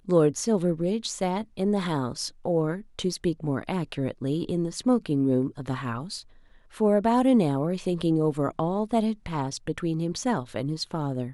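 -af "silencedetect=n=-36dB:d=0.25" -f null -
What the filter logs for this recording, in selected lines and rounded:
silence_start: 6.21
silence_end: 6.77 | silence_duration: 0.56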